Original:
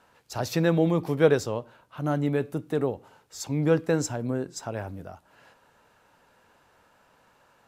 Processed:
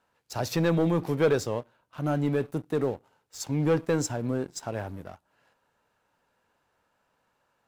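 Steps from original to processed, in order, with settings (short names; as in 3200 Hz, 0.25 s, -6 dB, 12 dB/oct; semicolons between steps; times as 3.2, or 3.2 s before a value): sample leveller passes 2; gain -7.5 dB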